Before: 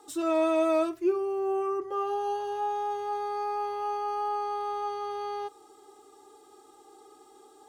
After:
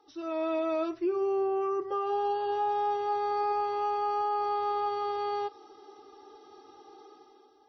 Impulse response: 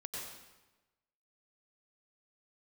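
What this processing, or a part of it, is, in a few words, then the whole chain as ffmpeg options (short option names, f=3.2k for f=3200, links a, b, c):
low-bitrate web radio: -af "dynaudnorm=f=150:g=9:m=11.5dB,alimiter=limit=-14dB:level=0:latency=1:release=143,volume=-8.5dB" -ar 24000 -c:a libmp3lame -b:a 24k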